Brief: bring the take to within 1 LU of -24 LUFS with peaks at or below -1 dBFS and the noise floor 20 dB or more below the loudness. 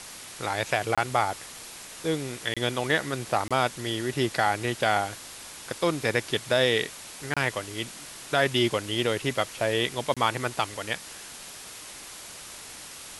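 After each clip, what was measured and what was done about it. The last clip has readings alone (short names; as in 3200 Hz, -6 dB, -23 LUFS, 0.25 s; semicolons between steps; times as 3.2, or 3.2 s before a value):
dropouts 5; longest dropout 26 ms; noise floor -43 dBFS; noise floor target -47 dBFS; loudness -27.0 LUFS; peak -8.0 dBFS; loudness target -24.0 LUFS
-> interpolate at 0.95/2.54/3.48/7.34/10.14, 26 ms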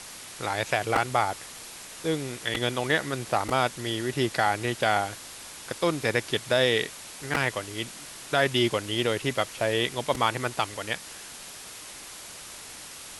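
dropouts 0; noise floor -43 dBFS; noise floor target -47 dBFS
-> noise print and reduce 6 dB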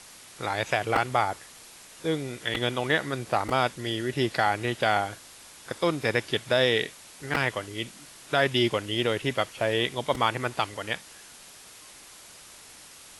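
noise floor -49 dBFS; loudness -27.0 LUFS; peak -8.0 dBFS; loudness target -24.0 LUFS
-> gain +3 dB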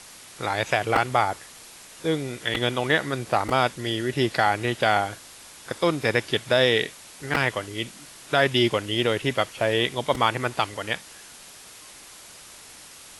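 loudness -24.0 LUFS; peak -5.0 dBFS; noise floor -46 dBFS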